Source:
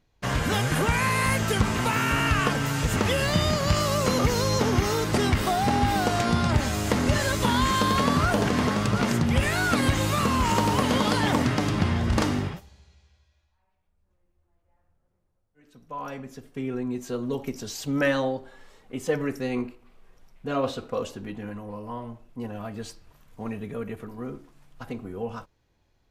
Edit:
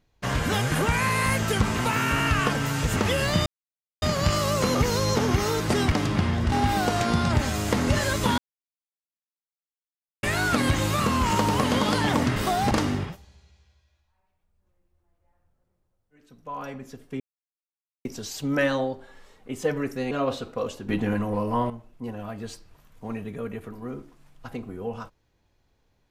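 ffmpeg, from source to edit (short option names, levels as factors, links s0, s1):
-filter_complex "[0:a]asplit=13[s0][s1][s2][s3][s4][s5][s6][s7][s8][s9][s10][s11][s12];[s0]atrim=end=3.46,asetpts=PTS-STARTPTS,afade=t=out:st=3.456:d=0.004:c=hsin,apad=pad_dur=0.56[s13];[s1]atrim=start=3.46:end=5.362,asetpts=PTS-STARTPTS,afade=t=in:d=0.004:c=hsin[s14];[s2]atrim=start=11.548:end=12.152[s15];[s3]atrim=start=5.708:end=7.57,asetpts=PTS-STARTPTS,afade=t=out:st=1.858:d=0.004:c=hsin[s16];[s4]atrim=start=7.57:end=9.42,asetpts=PTS-STARTPTS,volume=0[s17];[s5]atrim=start=9.42:end=11.552,asetpts=PTS-STARTPTS,afade=t=in:d=0.004:c=hsin[s18];[s6]atrim=start=5.358:end=5.712[s19];[s7]atrim=start=12.148:end=16.64,asetpts=PTS-STARTPTS,afade=t=out:st=4.488:d=0.004:c=hsin[s20];[s8]atrim=start=16.64:end=17.49,asetpts=PTS-STARTPTS,volume=0[s21];[s9]atrim=start=17.49:end=19.552,asetpts=PTS-STARTPTS,afade=t=in:d=0.004:c=hsin[s22];[s10]atrim=start=20.468:end=21.252[s23];[s11]atrim=start=21.248:end=22.062,asetpts=PTS-STARTPTS,volume=3.35[s24];[s12]atrim=start=22.058[s25];[s13][s14]concat=n=2:v=0:a=1[s26];[s26][s15]acrossfade=d=0.004:c1=hsin:c2=hsin[s27];[s16][s17][s18]concat=n=3:v=0:a=1[s28];[s27][s28]acrossfade=d=0.004:c1=hsin:c2=hsin[s29];[s29][s19]acrossfade=d=0.004:c1=hsin:c2=hsin[s30];[s20][s21][s22]concat=n=3:v=0:a=1[s31];[s30][s31]acrossfade=d=0.004:c1=hsin:c2=hsin[s32];[s32][s23]acrossfade=d=0.004:c1=hsin:c2=hsin[s33];[s33][s24]acrossfade=d=0.004:c1=hsin:c2=hsin[s34];[s34][s25]acrossfade=d=0.004:c1=hsin:c2=hsin"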